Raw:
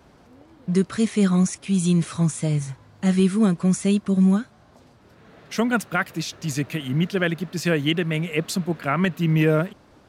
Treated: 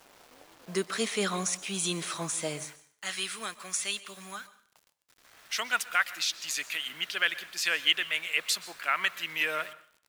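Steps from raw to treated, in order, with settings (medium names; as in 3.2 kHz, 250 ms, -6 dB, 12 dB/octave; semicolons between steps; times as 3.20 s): high-pass 530 Hz 12 dB/octave, from 2.65 s 1.4 kHz; dynamic bell 3.5 kHz, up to +4 dB, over -42 dBFS, Q 1.2; bit crusher 9-bit; plate-style reverb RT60 0.51 s, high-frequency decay 0.95×, pre-delay 110 ms, DRR 17 dB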